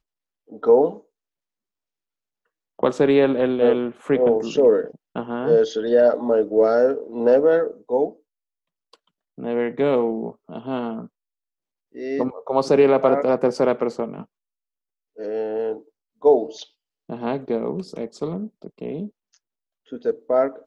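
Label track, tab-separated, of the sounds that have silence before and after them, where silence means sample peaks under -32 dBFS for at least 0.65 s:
2.790000	8.100000	sound
9.380000	11.050000	sound
11.970000	14.230000	sound
15.190000	19.070000	sound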